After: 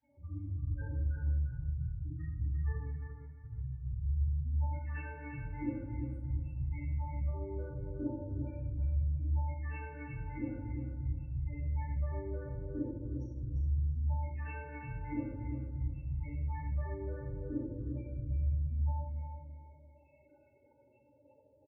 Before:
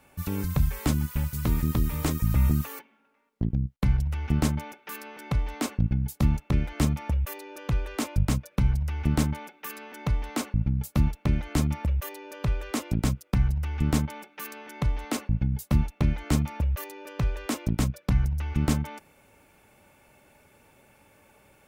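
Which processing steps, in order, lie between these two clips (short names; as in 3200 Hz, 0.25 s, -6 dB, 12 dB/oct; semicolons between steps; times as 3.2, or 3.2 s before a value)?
dynamic EQ 220 Hz, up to -6 dB, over -37 dBFS, Q 1.3; tube stage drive 31 dB, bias 0.8; loudest bins only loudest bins 4; speaker cabinet 170–5000 Hz, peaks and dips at 410 Hz -7 dB, 650 Hz -8 dB, 1600 Hz +6 dB, 3800 Hz -8 dB; fixed phaser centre 450 Hz, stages 4; feedback echo 0.349 s, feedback 25%, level -7 dB; shoebox room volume 220 m³, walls mixed, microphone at 6.3 m; gain -3.5 dB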